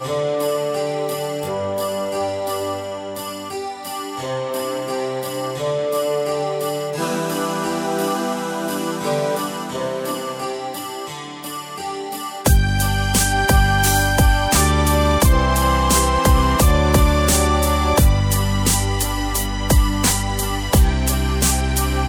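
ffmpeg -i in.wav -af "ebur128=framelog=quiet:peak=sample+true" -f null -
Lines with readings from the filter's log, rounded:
Integrated loudness:
  I:         -19.2 LUFS
  Threshold: -29.3 LUFS
Loudness range:
  LRA:         9.3 LU
  Threshold: -39.2 LUFS
  LRA low:   -25.0 LUFS
  LRA high:  -15.7 LUFS
Sample peak:
  Peak:       -2.4 dBFS
True peak:
  Peak:       -2.4 dBFS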